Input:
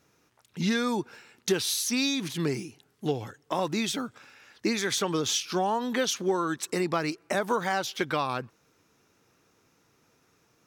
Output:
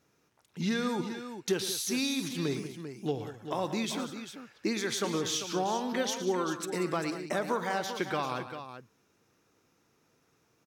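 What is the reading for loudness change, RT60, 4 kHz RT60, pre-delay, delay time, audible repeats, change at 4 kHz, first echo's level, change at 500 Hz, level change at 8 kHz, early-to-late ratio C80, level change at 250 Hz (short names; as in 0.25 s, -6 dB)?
-4.0 dB, none, none, none, 49 ms, 4, -4.5 dB, -19.5 dB, -3.0 dB, -4.5 dB, none, -3.0 dB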